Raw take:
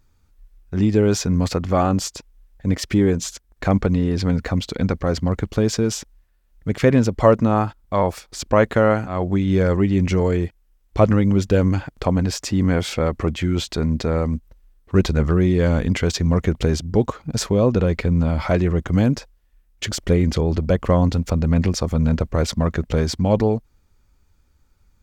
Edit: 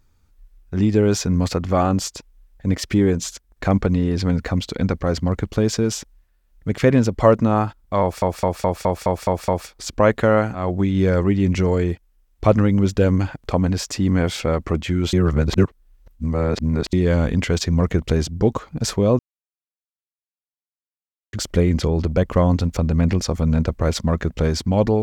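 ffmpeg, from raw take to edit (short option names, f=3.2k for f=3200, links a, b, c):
-filter_complex "[0:a]asplit=12[a][b][c][d][e][f][g][h][i][j][k][l];[a]atrim=end=8.222[m];[b]atrim=start=8.008:end=8.222[n];[c]atrim=start=8.008:end=8.222[o];[d]atrim=start=8.008:end=8.222[p];[e]atrim=start=8.008:end=8.222[q];[f]atrim=start=8.008:end=8.222[r];[g]atrim=start=8.008:end=8.222[s];[h]atrim=start=8.008:end=13.662[t];[i]atrim=start=13.658:end=15.462,asetpts=PTS-STARTPTS,areverse[u];[j]atrim=start=15.458:end=17.72,asetpts=PTS-STARTPTS,afade=t=out:st=2.258:d=0.004:c=hsin[v];[k]atrim=start=17.72:end=19.86,asetpts=PTS-STARTPTS,volume=0[w];[l]atrim=start=19.86,asetpts=PTS-STARTPTS,afade=t=in:d=0.004:c=hsin[x];[m][n]acrossfade=d=0.004:c1=hsin:c2=hsin[y];[y][o]acrossfade=d=0.004:c1=hsin:c2=hsin[z];[z][p]acrossfade=d=0.004:c1=hsin:c2=hsin[aa];[aa][q]acrossfade=d=0.004:c1=hsin:c2=hsin[ab];[ab][r]acrossfade=d=0.004:c1=hsin:c2=hsin[ac];[ac][s]acrossfade=d=0.004:c1=hsin:c2=hsin[ad];[ad][t]acrossfade=d=0.004:c1=hsin:c2=hsin[ae];[ae][u]acrossfade=d=0.004:c1=hsin:c2=hsin[af];[v][w][x]concat=n=3:v=0:a=1[ag];[af][ag]acrossfade=d=0.004:c1=hsin:c2=hsin"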